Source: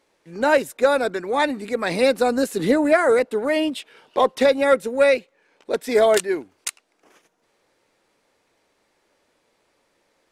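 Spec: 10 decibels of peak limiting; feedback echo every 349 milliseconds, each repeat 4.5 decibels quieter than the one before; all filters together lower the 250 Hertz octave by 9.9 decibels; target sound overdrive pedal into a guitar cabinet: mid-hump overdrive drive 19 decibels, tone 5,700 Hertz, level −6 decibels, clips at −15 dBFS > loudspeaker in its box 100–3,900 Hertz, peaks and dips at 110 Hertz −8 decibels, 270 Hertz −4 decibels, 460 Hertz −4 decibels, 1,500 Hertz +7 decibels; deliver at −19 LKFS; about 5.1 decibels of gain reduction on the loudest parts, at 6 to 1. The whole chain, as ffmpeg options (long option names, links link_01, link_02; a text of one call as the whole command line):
ffmpeg -i in.wav -filter_complex "[0:a]equalizer=frequency=250:width_type=o:gain=-9,acompressor=threshold=-18dB:ratio=6,alimiter=limit=-20dB:level=0:latency=1,aecho=1:1:349|698|1047|1396|1745|2094|2443|2792|3141:0.596|0.357|0.214|0.129|0.0772|0.0463|0.0278|0.0167|0.01,asplit=2[link_01][link_02];[link_02]highpass=frequency=720:poles=1,volume=19dB,asoftclip=type=tanh:threshold=-15dB[link_03];[link_01][link_03]amix=inputs=2:normalize=0,lowpass=frequency=5700:poles=1,volume=-6dB,highpass=100,equalizer=frequency=110:width_type=q:width=4:gain=-8,equalizer=frequency=270:width_type=q:width=4:gain=-4,equalizer=frequency=460:width_type=q:width=4:gain=-4,equalizer=frequency=1500:width_type=q:width=4:gain=7,lowpass=frequency=3900:width=0.5412,lowpass=frequency=3900:width=1.3066,volume=4dB" out.wav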